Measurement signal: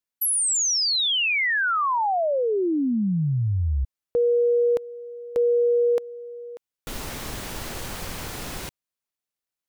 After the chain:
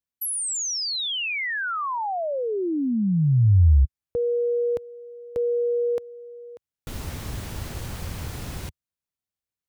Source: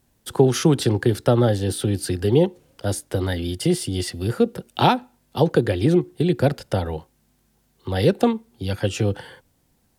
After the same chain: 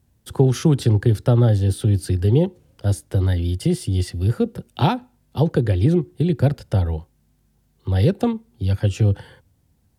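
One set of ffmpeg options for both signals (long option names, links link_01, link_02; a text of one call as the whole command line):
ffmpeg -i in.wav -af "equalizer=frequency=82:width=0.59:gain=13.5,volume=-5dB" out.wav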